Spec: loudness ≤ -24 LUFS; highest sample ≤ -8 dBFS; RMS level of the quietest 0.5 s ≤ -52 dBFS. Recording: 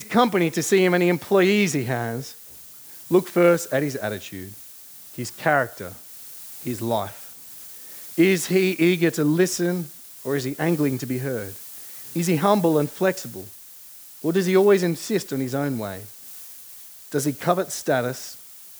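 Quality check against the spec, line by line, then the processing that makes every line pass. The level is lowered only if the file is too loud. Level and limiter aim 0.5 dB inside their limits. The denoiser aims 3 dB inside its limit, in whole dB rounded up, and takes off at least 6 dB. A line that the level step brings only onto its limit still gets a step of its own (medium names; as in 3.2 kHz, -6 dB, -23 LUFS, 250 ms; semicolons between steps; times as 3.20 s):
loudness -22.0 LUFS: fail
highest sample -3.0 dBFS: fail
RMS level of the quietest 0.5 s -44 dBFS: fail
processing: noise reduction 9 dB, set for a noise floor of -44 dBFS; trim -2.5 dB; peak limiter -8.5 dBFS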